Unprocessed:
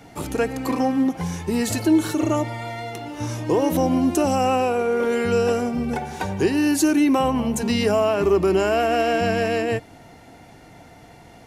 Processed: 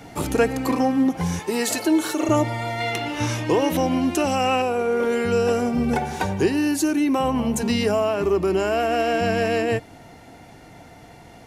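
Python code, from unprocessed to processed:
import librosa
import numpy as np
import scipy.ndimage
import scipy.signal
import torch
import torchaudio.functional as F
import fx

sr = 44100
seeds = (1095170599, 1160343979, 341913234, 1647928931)

y = fx.highpass(x, sr, hz=370.0, slope=12, at=(1.39, 2.29))
y = fx.peak_eq(y, sr, hz=2500.0, db=8.5, octaves=1.9, at=(2.8, 4.62))
y = fx.rider(y, sr, range_db=4, speed_s=0.5)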